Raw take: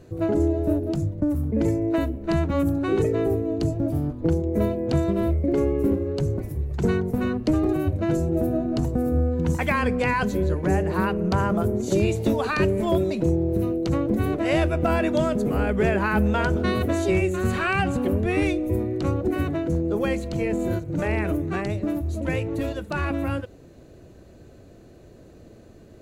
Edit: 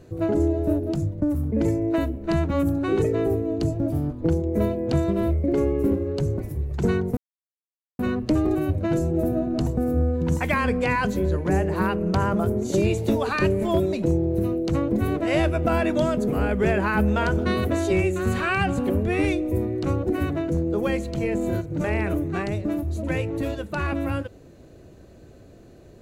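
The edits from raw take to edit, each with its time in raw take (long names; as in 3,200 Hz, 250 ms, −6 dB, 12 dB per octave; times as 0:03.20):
0:07.17: splice in silence 0.82 s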